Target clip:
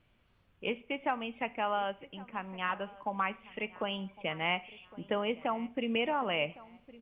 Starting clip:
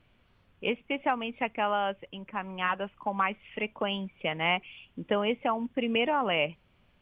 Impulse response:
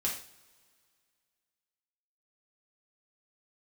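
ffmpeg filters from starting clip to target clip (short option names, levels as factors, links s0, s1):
-filter_complex "[0:a]asplit=2[s0][s1];[s1]adelay=1109,lowpass=f=2000:p=1,volume=0.112,asplit=2[s2][s3];[s3]adelay=1109,lowpass=f=2000:p=1,volume=0.36,asplit=2[s4][s5];[s5]adelay=1109,lowpass=f=2000:p=1,volume=0.36[s6];[s0][s2][s4][s6]amix=inputs=4:normalize=0,asplit=2[s7][s8];[1:a]atrim=start_sample=2205[s9];[s8][s9]afir=irnorm=-1:irlink=0,volume=0.133[s10];[s7][s10]amix=inputs=2:normalize=0,volume=0.531"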